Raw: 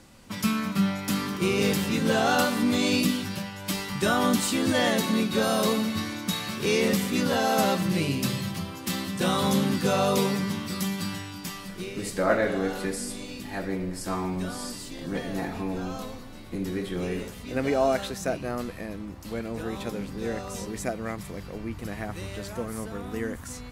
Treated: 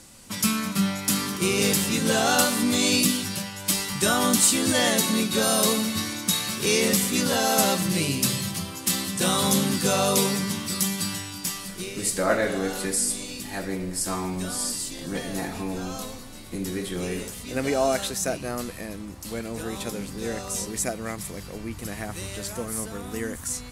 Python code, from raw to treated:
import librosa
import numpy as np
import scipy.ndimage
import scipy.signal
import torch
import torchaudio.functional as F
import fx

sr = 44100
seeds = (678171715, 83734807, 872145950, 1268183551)

y = fx.peak_eq(x, sr, hz=9300.0, db=13.0, octaves=1.8)